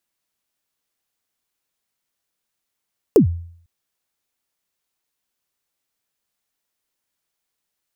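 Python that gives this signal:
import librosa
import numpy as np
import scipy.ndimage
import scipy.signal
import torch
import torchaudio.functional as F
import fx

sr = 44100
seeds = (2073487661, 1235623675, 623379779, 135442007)

y = fx.drum_kick(sr, seeds[0], length_s=0.5, level_db=-5.0, start_hz=490.0, end_hz=85.0, sweep_ms=106.0, decay_s=0.59, click=True)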